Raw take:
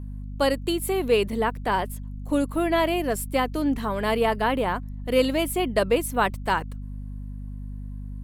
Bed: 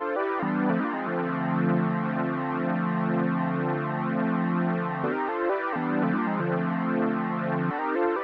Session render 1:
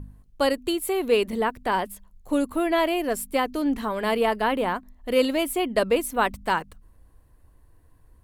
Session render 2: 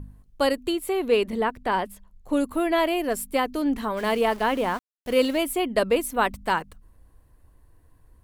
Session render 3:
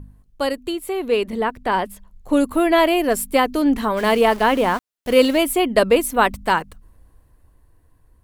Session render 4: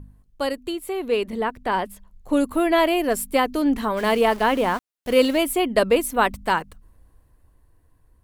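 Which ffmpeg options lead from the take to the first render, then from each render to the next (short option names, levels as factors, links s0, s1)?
-af "bandreject=f=50:t=h:w=4,bandreject=f=100:t=h:w=4,bandreject=f=150:t=h:w=4,bandreject=f=200:t=h:w=4,bandreject=f=250:t=h:w=4"
-filter_complex "[0:a]asettb=1/sr,asplit=3[s0][s1][s2];[s0]atrim=end=0.684[s3];[s1]atrim=start=0.68:end=2.37,asetpts=PTS-STARTPTS,afade=t=in:d=0.004:c=qsin,afade=t=out:st=1.686:d=0.004:c=qsin,highshelf=f=7000:g=-7.5[s4];[s2]atrim=start=2.366[s5];[s3][s4]acrossfade=d=0.004:c1=hsin:c2=qsin[s6];[s6][s5]acrossfade=d=0.004:c1=qsin:c2=hsin,asettb=1/sr,asplit=3[s7][s8][s9];[s7]atrim=end=3.974[s10];[s8]atrim=start=3.97:end=5.38,asetpts=PTS-STARTPTS,afade=t=in:d=0.004:c=qsin,afade=t=out:st=1.406:d=0.004:c=qsin,aeval=exprs='val(0)*gte(abs(val(0)),0.0126)':c=same[s11];[s9]atrim=start=5.376[s12];[s10][s11]acrossfade=d=0.004:c1=hsin:c2=qsin[s13];[s13][s12]acrossfade=d=0.004:c1=qsin:c2=hsin"
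-af "dynaudnorm=f=310:g=11:m=2.66"
-af "volume=0.708"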